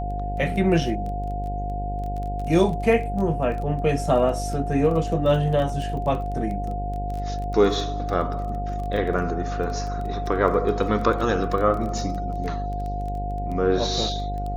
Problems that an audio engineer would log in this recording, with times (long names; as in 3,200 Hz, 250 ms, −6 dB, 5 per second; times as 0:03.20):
mains buzz 50 Hz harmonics 17 −29 dBFS
surface crackle 17 per second −30 dBFS
whistle 710 Hz −30 dBFS